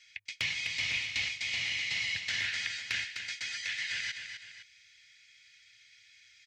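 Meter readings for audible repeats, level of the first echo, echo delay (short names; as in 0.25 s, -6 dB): 2, -8.0 dB, 0.255 s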